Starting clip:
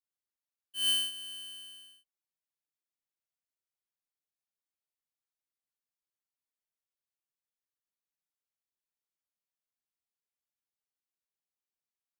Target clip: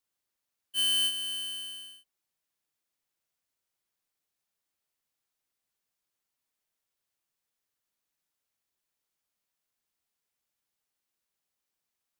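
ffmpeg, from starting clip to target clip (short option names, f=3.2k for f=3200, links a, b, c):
-af "asoftclip=type=hard:threshold=-34.5dB,volume=8.5dB"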